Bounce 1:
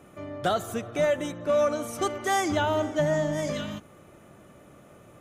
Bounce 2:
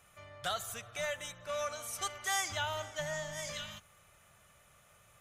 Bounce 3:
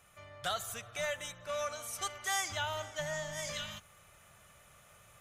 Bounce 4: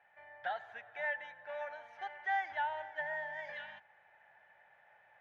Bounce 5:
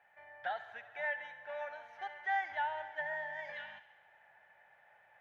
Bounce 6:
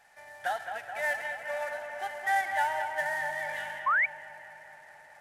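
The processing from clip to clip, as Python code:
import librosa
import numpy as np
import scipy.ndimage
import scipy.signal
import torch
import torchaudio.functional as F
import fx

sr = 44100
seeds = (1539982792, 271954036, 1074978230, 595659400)

y1 = fx.tone_stack(x, sr, knobs='10-0-10')
y2 = fx.rider(y1, sr, range_db=10, speed_s=2.0)
y3 = fx.double_bandpass(y2, sr, hz=1200.0, octaves=1.0)
y3 = fx.air_absorb(y3, sr, metres=290.0)
y3 = y3 * librosa.db_to_amplitude(9.0)
y4 = fx.echo_wet_highpass(y3, sr, ms=69, feedback_pct=68, hz=1500.0, wet_db=-13.5)
y5 = fx.cvsd(y4, sr, bps=64000)
y5 = fx.echo_bbd(y5, sr, ms=214, stages=4096, feedback_pct=73, wet_db=-7)
y5 = fx.spec_paint(y5, sr, seeds[0], shape='rise', start_s=3.86, length_s=0.2, low_hz=1000.0, high_hz=2400.0, level_db=-31.0)
y5 = y5 * librosa.db_to_amplitude(6.5)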